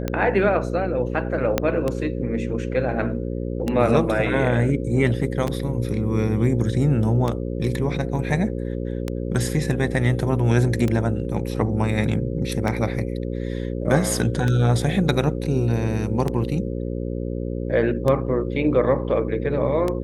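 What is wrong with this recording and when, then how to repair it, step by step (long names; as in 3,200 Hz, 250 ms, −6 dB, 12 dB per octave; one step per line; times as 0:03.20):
mains buzz 60 Hz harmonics 9 −27 dBFS
scratch tick 33 1/3 rpm −11 dBFS
0:01.58: click −5 dBFS
0:05.47: drop-out 2.4 ms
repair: click removal
hum removal 60 Hz, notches 9
repair the gap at 0:05.47, 2.4 ms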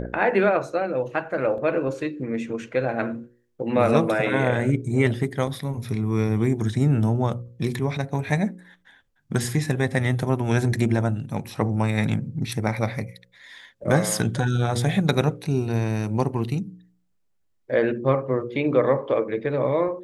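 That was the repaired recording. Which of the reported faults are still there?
0:01.58: click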